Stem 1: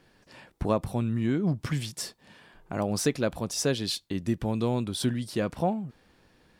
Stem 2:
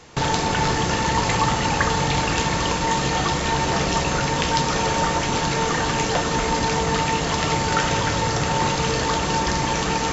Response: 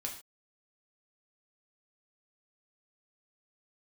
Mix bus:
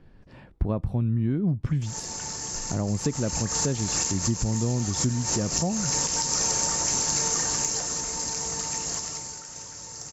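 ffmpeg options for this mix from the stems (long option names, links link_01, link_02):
-filter_complex "[0:a]aemphasis=mode=reproduction:type=riaa,volume=-1dB,asplit=2[link_01][link_02];[1:a]alimiter=limit=-14.5dB:level=0:latency=1:release=263,aexciter=amount=9.7:drive=7.2:freq=5100,adelay=1650,volume=-3dB,afade=type=in:start_time=2.71:duration=0.63:silence=0.237137,afade=type=out:start_time=7.31:duration=0.69:silence=0.334965,afade=type=out:start_time=8.9:duration=0.46:silence=0.298538[link_03];[link_02]apad=whole_len=519144[link_04];[link_03][link_04]sidechaincompress=threshold=-32dB:ratio=4:attack=40:release=122[link_05];[link_01][link_05]amix=inputs=2:normalize=0,acompressor=threshold=-26dB:ratio=2"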